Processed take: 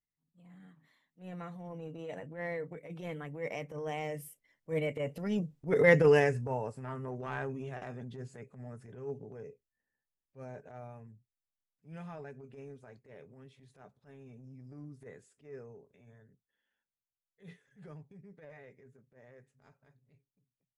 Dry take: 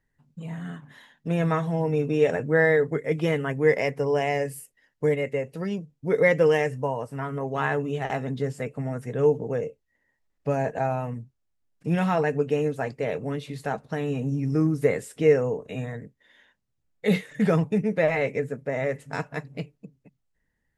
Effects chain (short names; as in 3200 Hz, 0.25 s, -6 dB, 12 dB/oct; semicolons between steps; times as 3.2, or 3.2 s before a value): Doppler pass-by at 5.67, 24 m/s, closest 11 m; bell 150 Hz +2.5 dB 1.2 oct; transient shaper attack -12 dB, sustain +2 dB